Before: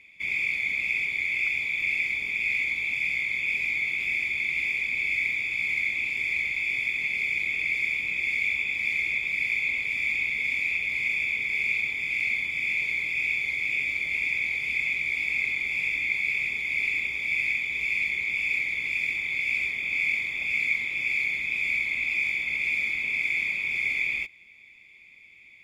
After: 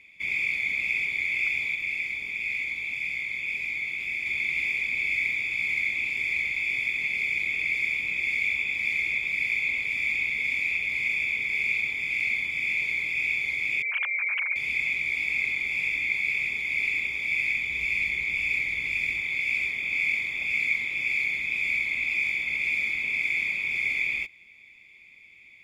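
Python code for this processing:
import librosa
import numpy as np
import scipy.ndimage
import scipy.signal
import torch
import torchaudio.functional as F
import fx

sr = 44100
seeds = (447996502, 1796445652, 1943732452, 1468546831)

y = fx.sine_speech(x, sr, at=(13.82, 14.56))
y = fx.low_shelf(y, sr, hz=110.0, db=9.0, at=(17.56, 19.21))
y = fx.edit(y, sr, fx.clip_gain(start_s=1.75, length_s=2.51, db=-3.5), tone=tone)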